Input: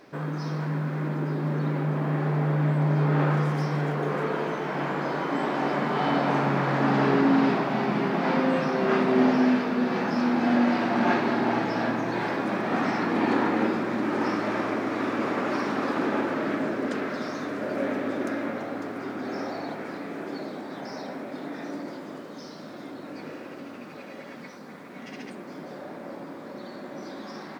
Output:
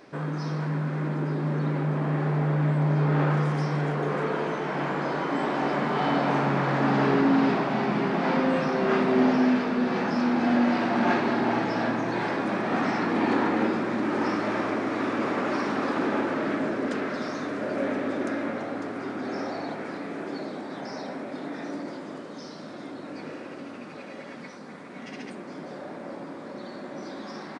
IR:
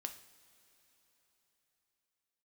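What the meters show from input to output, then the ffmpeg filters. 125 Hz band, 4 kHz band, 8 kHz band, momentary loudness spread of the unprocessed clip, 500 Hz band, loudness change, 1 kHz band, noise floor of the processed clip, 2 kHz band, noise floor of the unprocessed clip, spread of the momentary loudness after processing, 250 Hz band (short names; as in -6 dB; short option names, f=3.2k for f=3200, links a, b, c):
0.0 dB, 0.0 dB, n/a, 17 LU, 0.0 dB, 0.0 dB, 0.0 dB, -41 dBFS, 0.0 dB, -42 dBFS, 16 LU, 0.0 dB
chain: -filter_complex "[0:a]asplit=2[a][b];[b]asoftclip=type=tanh:threshold=-25.5dB,volume=-10dB[c];[a][c]amix=inputs=2:normalize=0,aresample=22050,aresample=44100,volume=-1.5dB"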